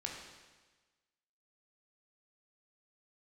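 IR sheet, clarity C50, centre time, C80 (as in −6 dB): 3.0 dB, 56 ms, 4.5 dB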